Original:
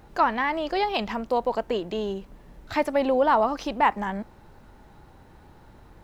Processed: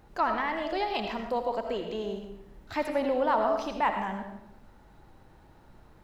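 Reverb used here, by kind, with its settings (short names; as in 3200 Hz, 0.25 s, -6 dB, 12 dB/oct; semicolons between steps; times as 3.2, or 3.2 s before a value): digital reverb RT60 0.74 s, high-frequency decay 0.8×, pre-delay 40 ms, DRR 4.5 dB; gain -6 dB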